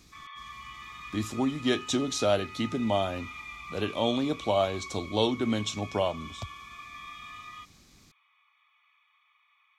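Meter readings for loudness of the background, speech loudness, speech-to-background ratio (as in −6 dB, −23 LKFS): −42.5 LKFS, −29.5 LKFS, 13.0 dB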